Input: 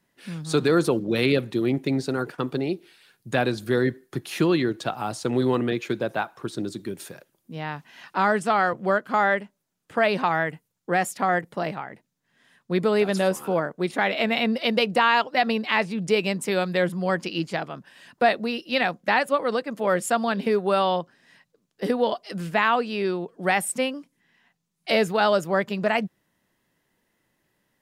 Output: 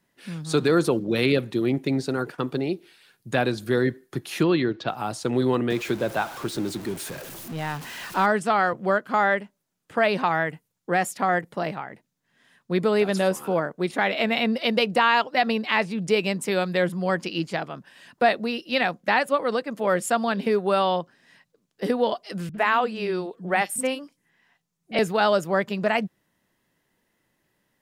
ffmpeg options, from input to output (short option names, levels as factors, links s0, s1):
-filter_complex "[0:a]asettb=1/sr,asplit=3[s0][s1][s2];[s0]atrim=end=4.434[s3];[s1]atrim=start=4.43:end=4.88,asetpts=PTS-STARTPTS,afade=t=in:d=0.004:c=qsin,afade=t=out:st=0.446:d=0.004:c=qsin,lowpass=f=4900:w=0.5412,lowpass=f=4900:w=1.3066[s4];[s2]atrim=start=4.876[s5];[s3][s4]acrossfade=d=0.004:c1=hsin:c2=qsin[s6];[s6][s5]acrossfade=d=0.004:c1=qsin:c2=hsin,asettb=1/sr,asplit=3[s7][s8][s9];[s7]atrim=end=5.704[s10];[s8]atrim=start=5.7:end=8.26,asetpts=PTS-STARTPTS,afade=t=in:d=0.004:c=qsin,afade=t=out:st=2.556:d=0.004:c=qsin,aeval=exprs='val(0)+0.5*0.0211*sgn(val(0))':c=same[s11];[s9]atrim=start=8.256[s12];[s10][s11]acrossfade=d=0.004:c1=hsin:c2=qsin[s13];[s13][s12]acrossfade=d=0.004:c1=qsin:c2=hsin,asettb=1/sr,asplit=3[s14][s15][s16];[s14]atrim=end=22.494[s17];[s15]atrim=start=22.49:end=24.99,asetpts=PTS-STARTPTS,afade=t=in:d=0.004:c=qsin,afade=t=out:st=2.496:d=0.004:c=qsin,acrossover=split=240|3400[s18][s19][s20];[s19]adelay=50[s21];[s20]adelay=90[s22];[s18][s21][s22]amix=inputs=3:normalize=0,atrim=end_sample=110250[s23];[s16]atrim=start=24.986[s24];[s17][s23]acrossfade=d=0.004:c1=hsin:c2=qsin[s25];[s25][s24]acrossfade=d=0.004:c1=qsin:c2=hsin"